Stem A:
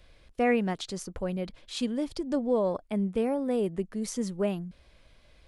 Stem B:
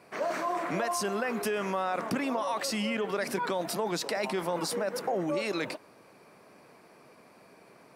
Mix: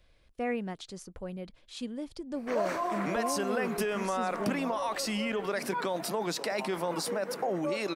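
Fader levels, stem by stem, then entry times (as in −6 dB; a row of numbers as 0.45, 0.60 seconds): −7.5, −1.0 decibels; 0.00, 2.35 seconds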